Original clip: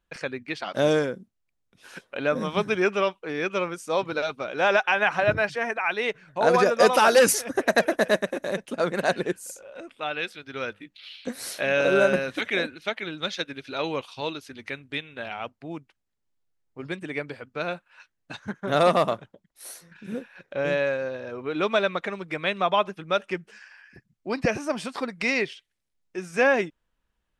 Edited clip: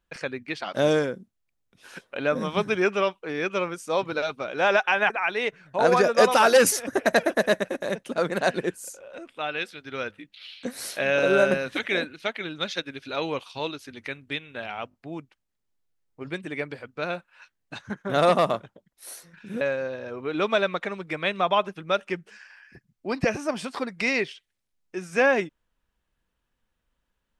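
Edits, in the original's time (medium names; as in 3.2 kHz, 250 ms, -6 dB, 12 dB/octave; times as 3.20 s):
5.10–5.72 s: delete
15.51 s: stutter 0.02 s, 3 plays
20.19–20.82 s: delete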